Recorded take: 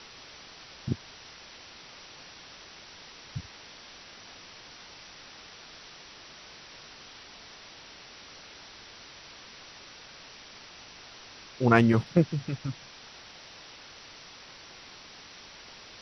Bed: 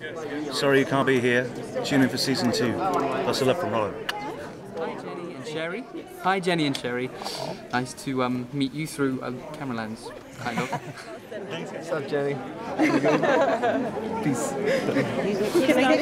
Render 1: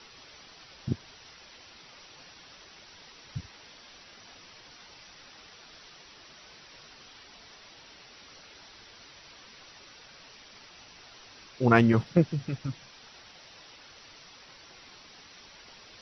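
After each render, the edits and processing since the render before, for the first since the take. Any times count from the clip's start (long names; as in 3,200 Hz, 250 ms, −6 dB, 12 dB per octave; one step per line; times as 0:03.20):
broadband denoise 6 dB, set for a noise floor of −49 dBFS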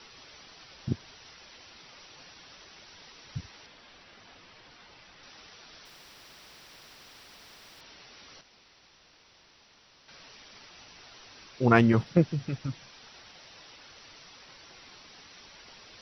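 0:03.66–0:05.23: high-frequency loss of the air 130 metres
0:05.85–0:07.81: every bin compressed towards the loudest bin 4 to 1
0:08.41–0:10.08: fill with room tone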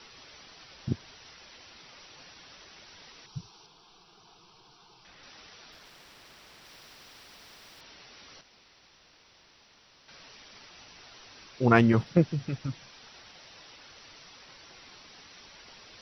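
0:03.26–0:05.05: phaser with its sweep stopped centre 380 Hz, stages 8
0:05.72–0:06.65: slack as between gear wheels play −52.5 dBFS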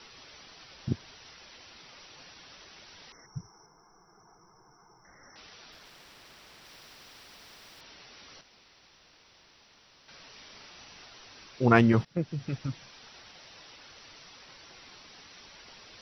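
0:03.12–0:05.36: linear-phase brick-wall band-stop 2,200–5,200 Hz
0:10.32–0:11.06: double-tracking delay 40 ms −5.5 dB
0:12.05–0:12.54: fade in linear, from −19 dB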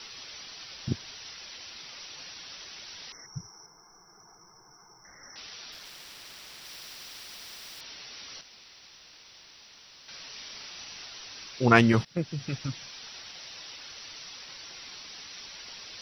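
high-shelf EQ 2,300 Hz +11.5 dB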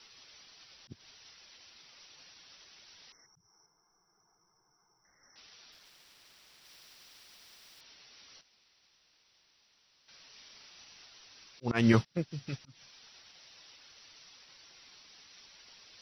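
volume swells 163 ms
expander for the loud parts 1.5 to 1, over −53 dBFS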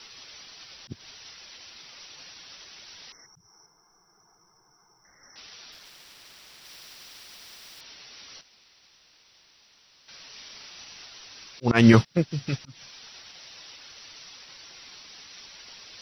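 level +10 dB
brickwall limiter −3 dBFS, peak gain reduction 2.5 dB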